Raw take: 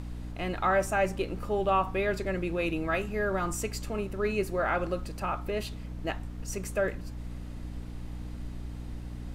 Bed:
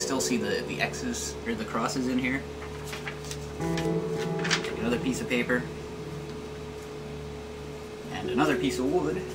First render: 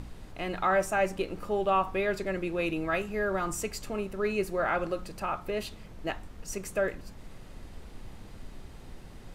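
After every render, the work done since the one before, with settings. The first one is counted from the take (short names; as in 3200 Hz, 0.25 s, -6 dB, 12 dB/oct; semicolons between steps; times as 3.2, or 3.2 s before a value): de-hum 60 Hz, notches 5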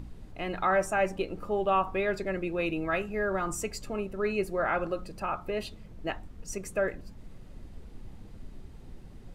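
denoiser 8 dB, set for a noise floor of -47 dBFS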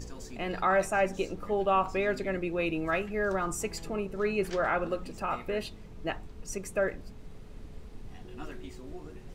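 add bed -19.5 dB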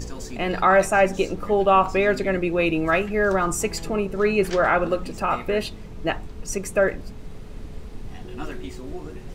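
gain +9 dB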